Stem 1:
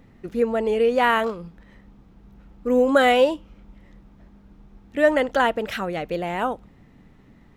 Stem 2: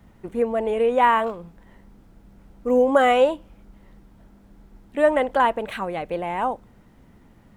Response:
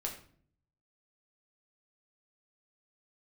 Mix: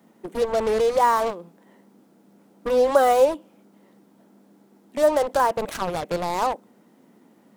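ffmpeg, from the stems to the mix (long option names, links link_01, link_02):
-filter_complex "[0:a]acrusher=bits=3:mix=0:aa=0.5,volume=3dB[link_01];[1:a]highpass=frequency=220:width=0.5412,highpass=frequency=220:width=1.3066,volume=3dB,asplit=2[link_02][link_03];[link_03]apad=whole_len=333751[link_04];[link_01][link_04]sidechaincompress=threshold=-17dB:ratio=8:attack=9.6:release=270[link_05];[link_05][link_02]amix=inputs=2:normalize=0,equalizer=frequency=1900:width_type=o:width=2.5:gain=-7"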